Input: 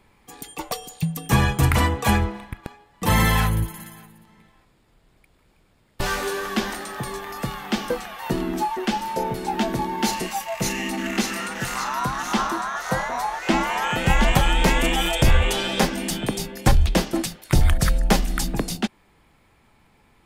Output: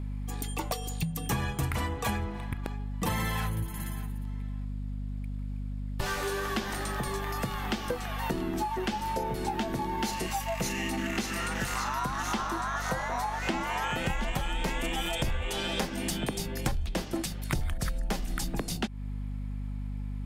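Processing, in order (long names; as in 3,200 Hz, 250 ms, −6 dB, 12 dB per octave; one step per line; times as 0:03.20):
mains hum 50 Hz, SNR 12 dB
downward compressor 6 to 1, threshold −28 dBFS, peak gain reduction 16 dB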